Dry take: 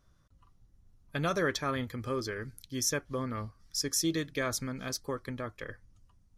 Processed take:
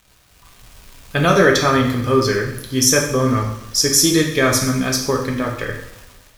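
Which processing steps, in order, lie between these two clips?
crackle 430/s -46 dBFS; AGC gain up to 10 dB; two-slope reverb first 0.69 s, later 1.8 s, DRR 0 dB; gain +4 dB

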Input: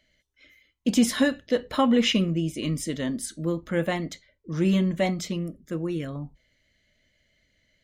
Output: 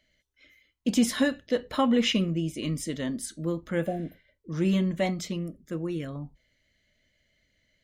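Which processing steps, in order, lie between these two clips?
spectral repair 3.89–4.26, 830–11000 Hz both; gain -2.5 dB

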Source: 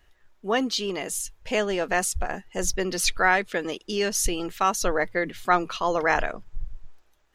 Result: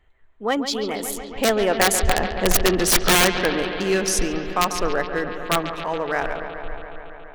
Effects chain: Wiener smoothing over 9 samples; Doppler pass-by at 2.5, 26 m/s, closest 28 m; wrapped overs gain 17.5 dB; on a send: analogue delay 0.14 s, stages 4096, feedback 81%, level -10.5 dB; on the sum: gain +8.5 dB

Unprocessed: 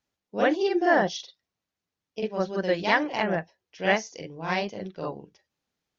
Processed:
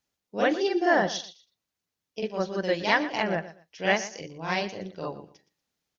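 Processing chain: high shelf 4000 Hz +6.5 dB; feedback echo 0.118 s, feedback 23%, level -15.5 dB; gain -1.5 dB

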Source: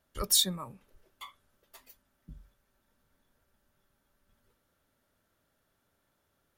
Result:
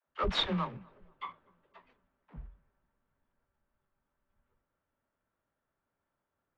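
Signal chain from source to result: block floating point 3-bit; LPF 3100 Hz 24 dB/oct; bell 1000 Hz +4.5 dB 0.74 oct; dispersion lows, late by 74 ms, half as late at 300 Hz; on a send: tape echo 0.245 s, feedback 81%, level -23.5 dB, low-pass 1000 Hz; on the sum: three-band expander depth 40%

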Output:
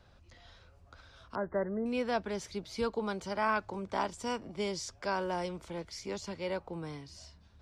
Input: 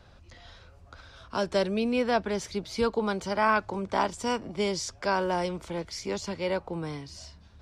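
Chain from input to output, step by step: 1.35–1.86 brick-wall FIR low-pass 2100 Hz; gain -6.5 dB

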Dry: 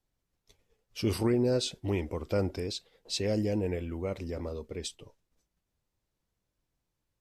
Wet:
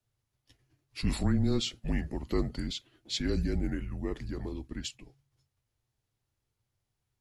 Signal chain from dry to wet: frequency shift -140 Hz; formant shift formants -2 st

